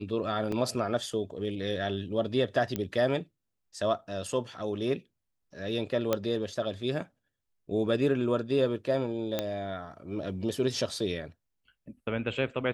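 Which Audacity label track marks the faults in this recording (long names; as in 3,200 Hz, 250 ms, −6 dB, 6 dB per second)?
0.520000	0.520000	drop-out 3.3 ms
2.760000	2.760000	click −17 dBFS
6.130000	6.130000	click −12 dBFS
9.390000	9.390000	click −14 dBFS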